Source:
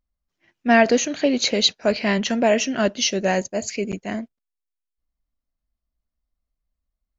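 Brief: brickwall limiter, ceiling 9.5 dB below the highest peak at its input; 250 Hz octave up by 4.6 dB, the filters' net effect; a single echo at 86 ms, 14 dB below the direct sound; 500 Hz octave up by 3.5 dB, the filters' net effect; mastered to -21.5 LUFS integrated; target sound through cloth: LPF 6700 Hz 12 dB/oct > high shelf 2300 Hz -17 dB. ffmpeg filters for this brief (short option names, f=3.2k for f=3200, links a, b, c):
-af "equalizer=f=250:t=o:g=4.5,equalizer=f=500:t=o:g=5,alimiter=limit=-9.5dB:level=0:latency=1,lowpass=6.7k,highshelf=f=2.3k:g=-17,aecho=1:1:86:0.2,volume=0.5dB"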